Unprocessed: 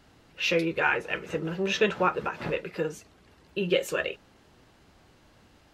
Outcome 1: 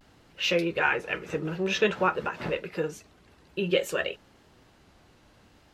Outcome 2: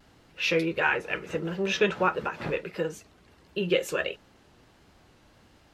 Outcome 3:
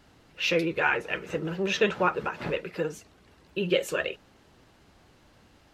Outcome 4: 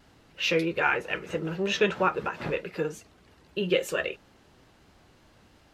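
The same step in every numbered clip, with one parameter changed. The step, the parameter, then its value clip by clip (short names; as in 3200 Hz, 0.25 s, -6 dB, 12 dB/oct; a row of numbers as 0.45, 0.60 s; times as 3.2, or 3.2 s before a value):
vibrato, rate: 0.54, 1.5, 15, 3.1 Hz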